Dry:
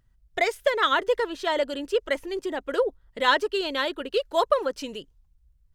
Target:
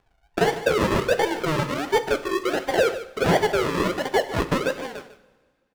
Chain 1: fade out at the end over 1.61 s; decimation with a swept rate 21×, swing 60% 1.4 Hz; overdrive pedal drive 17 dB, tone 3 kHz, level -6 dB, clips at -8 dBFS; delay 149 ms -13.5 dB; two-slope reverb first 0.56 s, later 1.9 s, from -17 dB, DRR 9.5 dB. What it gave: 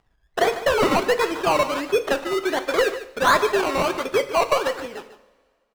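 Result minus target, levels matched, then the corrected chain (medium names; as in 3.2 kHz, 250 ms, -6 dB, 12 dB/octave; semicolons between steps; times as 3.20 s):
decimation with a swept rate: distortion -17 dB
fade out at the end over 1.61 s; decimation with a swept rate 47×, swing 60% 1.4 Hz; overdrive pedal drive 17 dB, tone 3 kHz, level -6 dB, clips at -8 dBFS; delay 149 ms -13.5 dB; two-slope reverb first 0.56 s, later 1.9 s, from -17 dB, DRR 9.5 dB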